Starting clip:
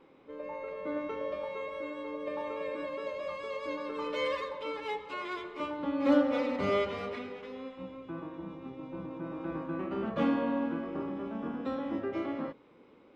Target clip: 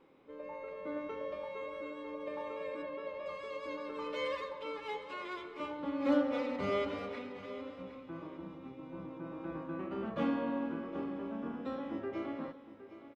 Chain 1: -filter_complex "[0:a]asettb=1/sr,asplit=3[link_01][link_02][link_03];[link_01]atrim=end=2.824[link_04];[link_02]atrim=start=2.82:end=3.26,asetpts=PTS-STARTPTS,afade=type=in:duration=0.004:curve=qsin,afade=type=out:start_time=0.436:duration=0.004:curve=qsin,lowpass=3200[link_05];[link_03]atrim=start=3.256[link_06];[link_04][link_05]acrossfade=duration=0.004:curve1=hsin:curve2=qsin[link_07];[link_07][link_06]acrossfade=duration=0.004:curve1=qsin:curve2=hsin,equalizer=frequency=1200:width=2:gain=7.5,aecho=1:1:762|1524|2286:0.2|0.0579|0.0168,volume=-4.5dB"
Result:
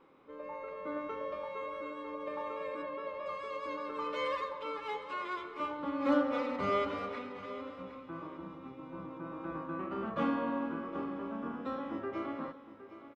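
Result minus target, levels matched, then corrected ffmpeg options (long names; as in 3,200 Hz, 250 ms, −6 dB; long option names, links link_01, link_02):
1,000 Hz band +4.0 dB
-filter_complex "[0:a]asettb=1/sr,asplit=3[link_01][link_02][link_03];[link_01]atrim=end=2.824[link_04];[link_02]atrim=start=2.82:end=3.26,asetpts=PTS-STARTPTS,afade=type=in:duration=0.004:curve=qsin,afade=type=out:start_time=0.436:duration=0.004:curve=qsin,lowpass=3200[link_05];[link_03]atrim=start=3.256[link_06];[link_04][link_05]acrossfade=duration=0.004:curve1=hsin:curve2=qsin[link_07];[link_07][link_06]acrossfade=duration=0.004:curve1=qsin:curve2=hsin,aecho=1:1:762|1524|2286:0.2|0.0579|0.0168,volume=-4.5dB"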